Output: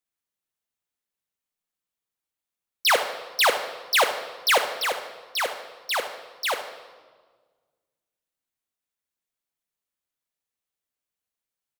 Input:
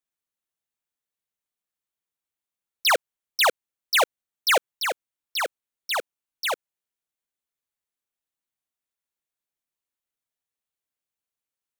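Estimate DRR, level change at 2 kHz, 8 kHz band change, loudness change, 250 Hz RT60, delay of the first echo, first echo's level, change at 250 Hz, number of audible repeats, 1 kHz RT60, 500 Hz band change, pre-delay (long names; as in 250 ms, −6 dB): 6.5 dB, +1.0 dB, +0.5 dB, +0.5 dB, 1.9 s, 74 ms, −13.0 dB, +1.0 dB, 1, 1.5 s, +1.0 dB, 4 ms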